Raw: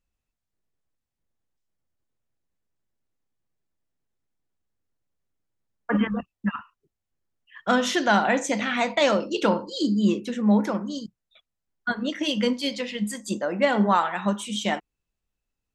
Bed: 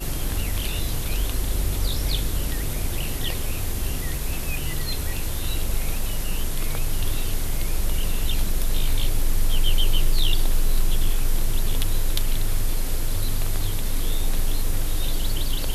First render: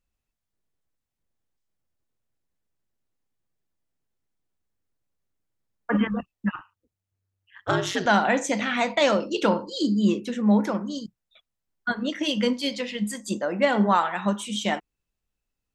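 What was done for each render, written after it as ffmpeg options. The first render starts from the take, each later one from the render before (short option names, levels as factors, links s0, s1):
-filter_complex "[0:a]asettb=1/sr,asplit=3[s0][s1][s2];[s0]atrim=end=6.504[s3];[s1]atrim=start=6.5:end=8.06,asetpts=PTS-STARTPTS,afade=t=in:d=0.004:c=qsin,afade=t=out:st=1.556:d=0.004:c=qsin,aeval=exprs='val(0)*sin(2*PI*96*n/s)':c=same[s4];[s2]atrim=start=8.056[s5];[s3][s4]acrossfade=d=0.004:c1=hsin:c2=qsin[s6];[s6][s5]acrossfade=d=0.004:c1=qsin:c2=hsin"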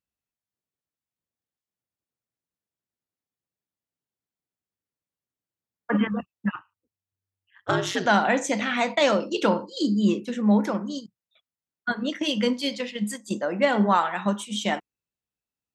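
-af "agate=range=0.447:threshold=0.0251:ratio=16:detection=peak,highpass=95"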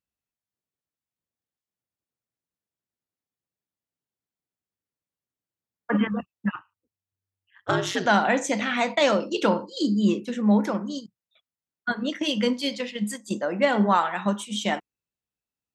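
-af anull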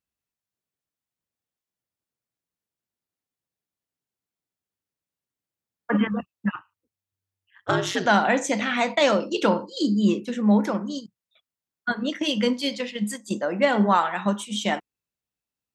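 -af "volume=1.12"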